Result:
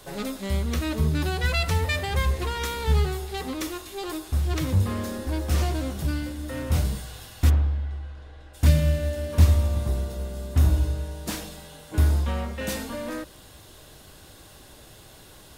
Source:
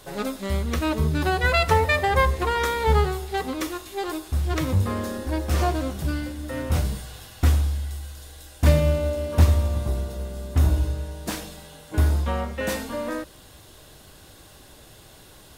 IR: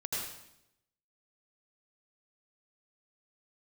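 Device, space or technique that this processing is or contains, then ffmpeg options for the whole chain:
one-band saturation: -filter_complex "[0:a]asplit=3[link_01][link_02][link_03];[link_01]afade=type=out:start_time=7.49:duration=0.02[link_04];[link_02]lowpass=2000,afade=type=in:start_time=7.49:duration=0.02,afade=type=out:start_time=8.53:duration=0.02[link_05];[link_03]afade=type=in:start_time=8.53:duration=0.02[link_06];[link_04][link_05][link_06]amix=inputs=3:normalize=0,acrossover=split=280|2400[link_07][link_08][link_09];[link_08]asoftclip=type=tanh:threshold=-32dB[link_10];[link_07][link_10][link_09]amix=inputs=3:normalize=0"

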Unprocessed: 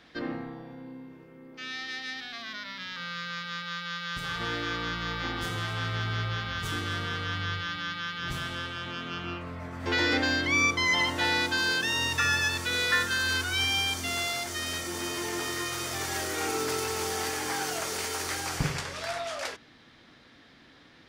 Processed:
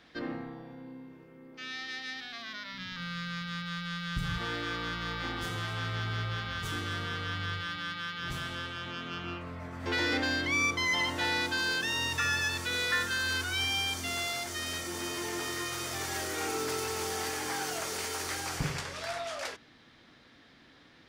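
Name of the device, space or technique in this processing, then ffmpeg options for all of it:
parallel distortion: -filter_complex "[0:a]asplit=3[link_01][link_02][link_03];[link_01]afade=type=out:start_time=2.72:duration=0.02[link_04];[link_02]asubboost=boost=6.5:cutoff=200,afade=type=in:start_time=2.72:duration=0.02,afade=type=out:start_time=4.37:duration=0.02[link_05];[link_03]afade=type=in:start_time=4.37:duration=0.02[link_06];[link_04][link_05][link_06]amix=inputs=3:normalize=0,asplit=2[link_07][link_08];[link_08]asoftclip=type=hard:threshold=-27.5dB,volume=-6.5dB[link_09];[link_07][link_09]amix=inputs=2:normalize=0,volume=-6dB"

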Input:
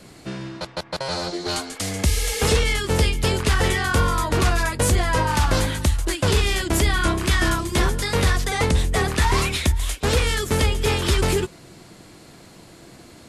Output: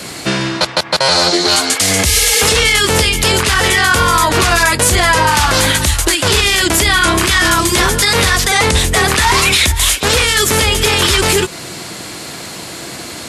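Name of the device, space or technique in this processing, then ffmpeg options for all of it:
mastering chain: -af "highpass=57,equalizer=frequency=720:width_type=o:width=2.9:gain=3,acompressor=threshold=-24dB:ratio=2,tiltshelf=frequency=1300:gain=-5.5,alimiter=level_in=18.5dB:limit=-1dB:release=50:level=0:latency=1,volume=-1dB"

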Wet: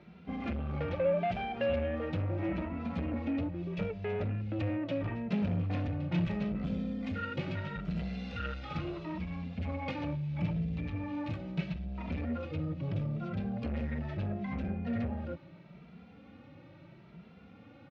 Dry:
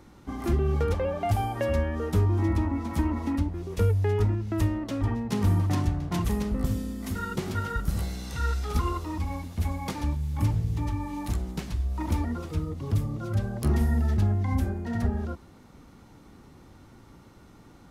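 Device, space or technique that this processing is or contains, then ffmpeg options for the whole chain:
barber-pole flanger into a guitar amplifier: -filter_complex "[0:a]asplit=2[link_01][link_02];[link_02]adelay=2.6,afreqshift=0.76[link_03];[link_01][link_03]amix=inputs=2:normalize=1,asoftclip=type=tanh:threshold=-28dB,highpass=96,equalizer=frequency=170:width_type=q:width=4:gain=9,equalizer=frequency=390:width_type=q:width=4:gain=-5,equalizer=frequency=560:width_type=q:width=4:gain=8,equalizer=frequency=1000:width_type=q:width=4:gain=-7,equalizer=frequency=2500:width_type=q:width=4:gain=9,lowpass=frequency=3800:width=0.5412,lowpass=frequency=3800:width=1.3066"

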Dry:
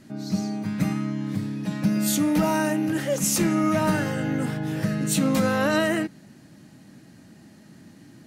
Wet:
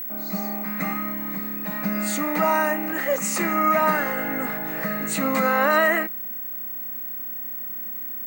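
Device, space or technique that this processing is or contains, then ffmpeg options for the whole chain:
old television with a line whistle: -af "highpass=frequency=220:width=0.5412,highpass=frequency=220:width=1.3066,equalizer=frequency=310:width_type=q:width=4:gain=-8,equalizer=frequency=730:width_type=q:width=4:gain=5,equalizer=frequency=1200:width_type=q:width=4:gain=9,equalizer=frequency=2000:width_type=q:width=4:gain=10,equalizer=frequency=3300:width_type=q:width=4:gain=-9,equalizer=frequency=5500:width_type=q:width=4:gain=-9,lowpass=frequency=8600:width=0.5412,lowpass=frequency=8600:width=1.3066,aeval=exprs='val(0)+0.0316*sin(2*PI*15734*n/s)':channel_layout=same,volume=1dB"

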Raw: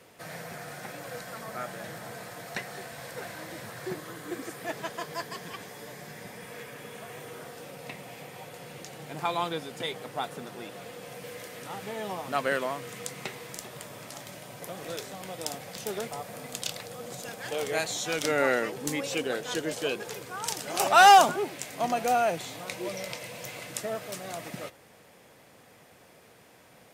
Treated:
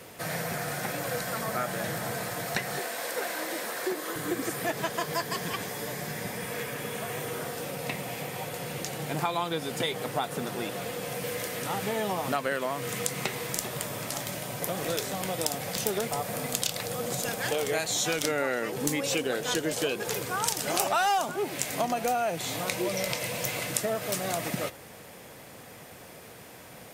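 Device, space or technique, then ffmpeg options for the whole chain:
ASMR close-microphone chain: -filter_complex "[0:a]lowshelf=frequency=140:gain=4,acompressor=threshold=-33dB:ratio=6,highshelf=frequency=9900:gain=7,asettb=1/sr,asplit=3[link_01][link_02][link_03];[link_01]atrim=end=2.794[link_04];[link_02]atrim=start=2.79:end=4.16,asetpts=PTS-STARTPTS,afade=type=in:duration=0.004:curve=qsin,afade=type=out:start_time=1.366:duration=0.004:curve=qsin,highpass=frequency=270:width=0.5412,highpass=frequency=270:width=1.3066[link_05];[link_03]atrim=start=4.156[link_06];[link_04][link_05]acrossfade=duration=0.004:curve1=hsin:curve2=qsin[link_07];[link_07][link_06]acrossfade=duration=0.004:curve1=qsin:curve2=hsin,volume=7.5dB"

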